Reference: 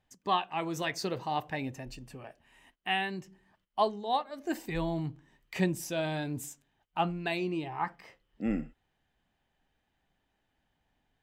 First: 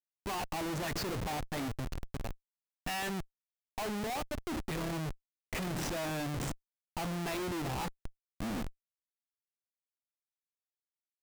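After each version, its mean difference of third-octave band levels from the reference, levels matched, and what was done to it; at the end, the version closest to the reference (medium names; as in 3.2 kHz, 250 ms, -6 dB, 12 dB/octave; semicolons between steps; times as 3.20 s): 13.0 dB: low-pass 9.2 kHz 12 dB/octave; Schmitt trigger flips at -40 dBFS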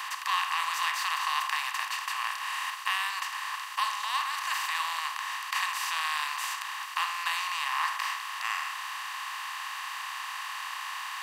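22.0 dB: spectral levelling over time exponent 0.2; Chebyshev high-pass 1 kHz, order 5; trim -2 dB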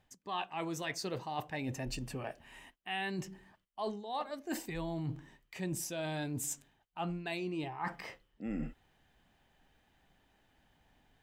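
5.0 dB: dynamic bell 8.1 kHz, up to +4 dB, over -55 dBFS, Q 0.84; reverse; compression 8:1, threshold -43 dBFS, peak gain reduction 20.5 dB; reverse; trim +7.5 dB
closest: third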